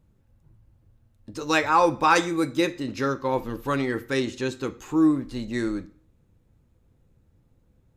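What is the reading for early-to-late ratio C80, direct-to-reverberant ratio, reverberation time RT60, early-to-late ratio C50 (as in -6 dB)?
21.5 dB, 10.0 dB, 0.50 s, 18.0 dB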